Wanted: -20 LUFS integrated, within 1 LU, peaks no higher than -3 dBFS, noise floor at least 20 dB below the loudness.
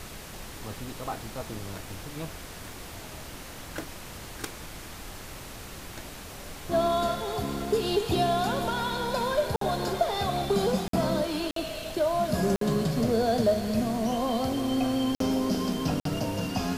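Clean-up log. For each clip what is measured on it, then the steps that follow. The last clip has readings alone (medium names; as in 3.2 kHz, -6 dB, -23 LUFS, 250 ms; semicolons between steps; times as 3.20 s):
dropouts 6; longest dropout 53 ms; noise floor -42 dBFS; noise floor target -49 dBFS; loudness -28.5 LUFS; peak level -13.0 dBFS; loudness target -20.0 LUFS
-> interpolate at 9.56/10.88/11.51/12.56/15.15/16.00 s, 53 ms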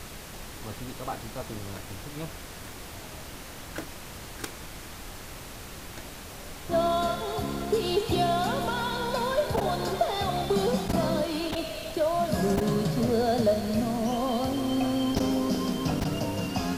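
dropouts 0; noise floor -42 dBFS; noise floor target -49 dBFS
-> noise print and reduce 7 dB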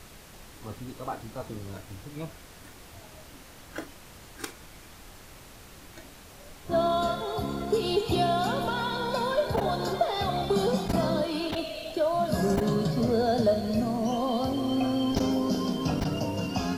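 noise floor -49 dBFS; loudness -28.0 LUFS; peak level -13.0 dBFS; loudness target -20.0 LUFS
-> trim +8 dB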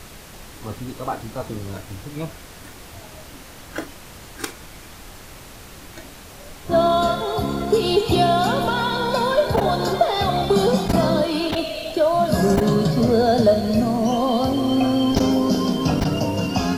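loudness -20.0 LUFS; peak level -5.0 dBFS; noise floor -41 dBFS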